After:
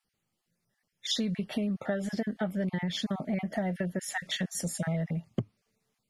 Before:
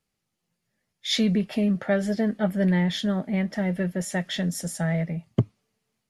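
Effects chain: random holes in the spectrogram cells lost 21%; 3.26–3.90 s: peaking EQ 700 Hz +12 dB 0.28 oct; compression 12:1, threshold -27 dBFS, peak gain reduction 13 dB

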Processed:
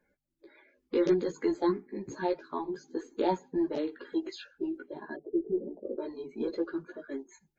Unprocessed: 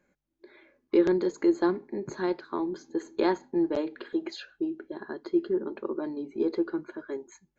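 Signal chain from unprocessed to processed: coarse spectral quantiser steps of 30 dB; chorus voices 4, 0.27 Hz, delay 15 ms, depth 4.3 ms; 5.16–5.98 s: Chebyshev low-pass 730 Hz, order 5

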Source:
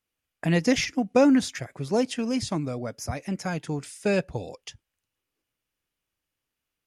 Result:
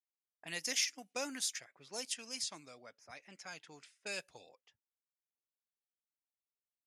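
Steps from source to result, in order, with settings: level-controlled noise filter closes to 550 Hz, open at -22 dBFS; differentiator

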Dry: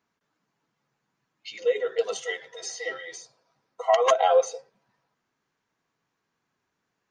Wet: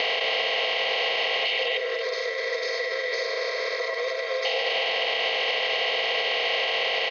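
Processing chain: spectral levelling over time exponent 0.2; elliptic low-pass 4.6 kHz, stop band 50 dB; resonant high shelf 1.8 kHz +10.5 dB, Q 3; compression 4:1, threshold -21 dBFS, peak gain reduction 11.5 dB; peak limiter -19.5 dBFS, peak gain reduction 13 dB; 1.77–4.45 s: static phaser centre 790 Hz, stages 6; delay 247 ms -12.5 dB; three bands compressed up and down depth 70%; trim +3 dB

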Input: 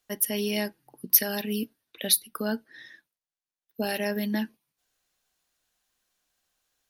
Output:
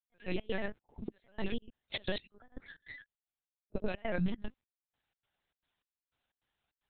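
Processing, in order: gate -45 dBFS, range -10 dB; compression 8:1, threshold -36 dBFS, peak gain reduction 22 dB; pre-echo 33 ms -13.5 dB; granulator 100 ms, grains 20 per s, pitch spread up and down by 3 st; LPC vocoder at 8 kHz pitch kept; trance gate "..xx.xxx.xx." 152 bpm -24 dB; trim +7.5 dB

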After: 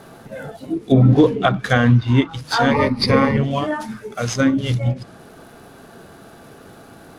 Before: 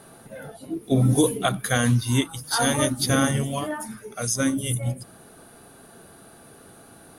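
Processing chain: median filter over 5 samples; low-pass that closes with the level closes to 2.5 kHz, closed at -19 dBFS; 2.71–3.37 s: rippled EQ curve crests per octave 0.89, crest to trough 15 dB; trim +7 dB

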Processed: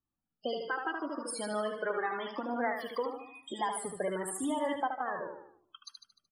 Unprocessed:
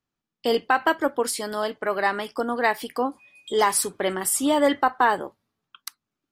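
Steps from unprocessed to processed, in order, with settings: 0.95–1.20 s: spectral replace 650–5400 Hz after; 3.69–4.60 s: treble shelf 2.6 kHz -8 dB; compression 5:1, threshold -26 dBFS, peak gain reduction 11 dB; loudest bins only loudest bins 32; feedback delay 75 ms, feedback 49%, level -5 dB; Shepard-style flanger falling 0.87 Hz

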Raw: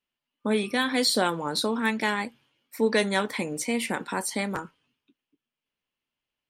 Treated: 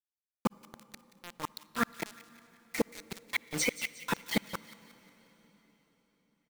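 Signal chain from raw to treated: coarse spectral quantiser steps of 15 dB; low-pass 2.9 kHz 12 dB/octave; treble shelf 2.1 kHz +11 dB; comb 5.9 ms, depth 83%; in parallel at -3 dB: peak limiter -15 dBFS, peak gain reduction 9 dB; on the sum: inverted gate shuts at -12 dBFS, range -29 dB; saturation -16.5 dBFS, distortion -16 dB; word length cut 6-bit, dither none; feedback echo behind a high-pass 179 ms, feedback 46%, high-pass 1.9 kHz, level -14 dB; on a send at -20 dB: reverberation RT60 4.5 s, pre-delay 48 ms

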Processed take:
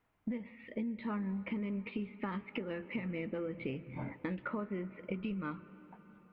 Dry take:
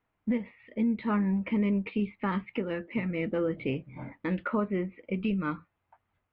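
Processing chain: compression 6:1, threshold -38 dBFS, peak gain reduction 13.5 dB; on a send: reverberation RT60 4.7 s, pre-delay 120 ms, DRR 16 dB; on the sum: trim +2 dB

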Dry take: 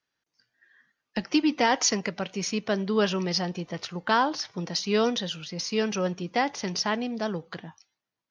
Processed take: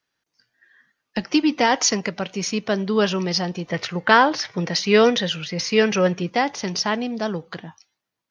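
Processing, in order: 3.69–6.30 s: graphic EQ 125/500/2000 Hz +6/+5/+9 dB; trim +4.5 dB

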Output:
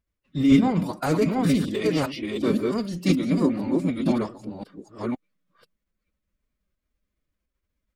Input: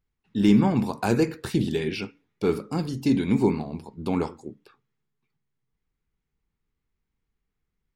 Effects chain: chunks repeated in reverse 515 ms, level -2 dB; formant-preserving pitch shift +5 st

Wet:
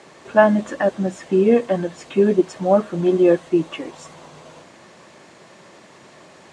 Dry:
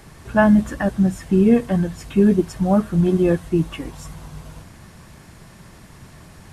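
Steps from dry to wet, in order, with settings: cabinet simulation 320–7400 Hz, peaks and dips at 360 Hz +3 dB, 560 Hz +6 dB, 1.5 kHz -3 dB, 5.3 kHz -4 dB; trim +2.5 dB

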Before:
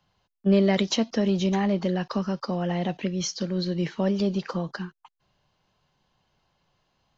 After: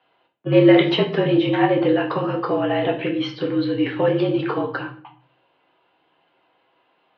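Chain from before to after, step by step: mistuned SSB -52 Hz 300–3400 Hz; simulated room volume 50 m³, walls mixed, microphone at 0.59 m; trim +7 dB

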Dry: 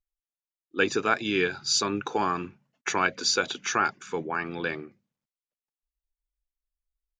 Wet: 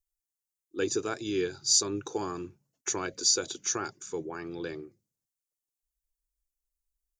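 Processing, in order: FFT filter 110 Hz 0 dB, 220 Hz -11 dB, 340 Hz 0 dB, 700 Hz -10 dB, 1.5 kHz -13 dB, 2.6 kHz -14 dB, 6.7 kHz +6 dB

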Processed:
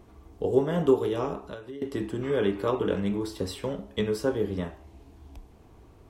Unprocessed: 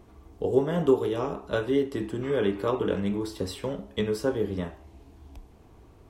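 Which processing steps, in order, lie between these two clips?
1.38–1.82 s: compression 12:1, threshold -37 dBFS, peak gain reduction 18.5 dB

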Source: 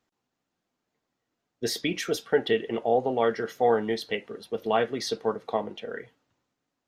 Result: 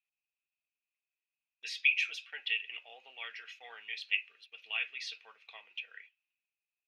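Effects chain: gate -43 dBFS, range -10 dB; ladder band-pass 2.6 kHz, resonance 90%; trim +5 dB

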